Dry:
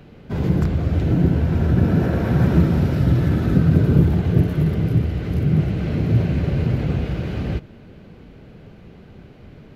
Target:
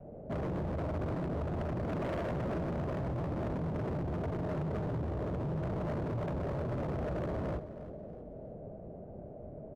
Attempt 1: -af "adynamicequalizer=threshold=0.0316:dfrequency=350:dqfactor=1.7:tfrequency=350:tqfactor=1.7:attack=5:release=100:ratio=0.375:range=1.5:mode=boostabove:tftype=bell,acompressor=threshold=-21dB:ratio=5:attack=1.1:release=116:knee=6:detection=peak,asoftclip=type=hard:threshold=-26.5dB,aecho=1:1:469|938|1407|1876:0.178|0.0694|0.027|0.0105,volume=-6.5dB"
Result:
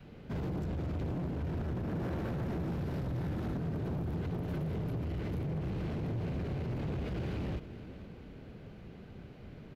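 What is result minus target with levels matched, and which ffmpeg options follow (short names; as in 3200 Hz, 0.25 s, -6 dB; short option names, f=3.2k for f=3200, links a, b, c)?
echo 0.147 s late; 500 Hz band -5.0 dB
-af "adynamicequalizer=threshold=0.0316:dfrequency=350:dqfactor=1.7:tfrequency=350:tqfactor=1.7:attack=5:release=100:ratio=0.375:range=1.5:mode=boostabove:tftype=bell,acompressor=threshold=-21dB:ratio=5:attack=1.1:release=116:knee=6:detection=peak,lowpass=f=630:t=q:w=6.7,asoftclip=type=hard:threshold=-26.5dB,aecho=1:1:322|644|966|1288:0.178|0.0694|0.027|0.0105,volume=-6.5dB"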